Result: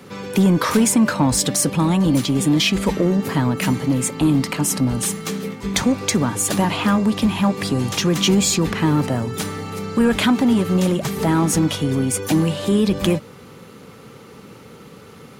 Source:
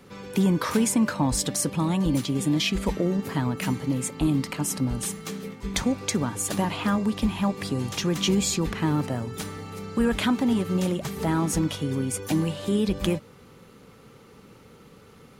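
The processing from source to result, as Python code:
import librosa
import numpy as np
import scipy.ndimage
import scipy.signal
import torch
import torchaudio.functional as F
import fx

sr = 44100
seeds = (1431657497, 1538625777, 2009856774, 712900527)

p1 = scipy.signal.sosfilt(scipy.signal.butter(2, 85.0, 'highpass', fs=sr, output='sos'), x)
p2 = 10.0 ** (-26.5 / 20.0) * np.tanh(p1 / 10.0 ** (-26.5 / 20.0))
p3 = p1 + (p2 * librosa.db_to_amplitude(-3.0))
y = p3 * librosa.db_to_amplitude(4.5)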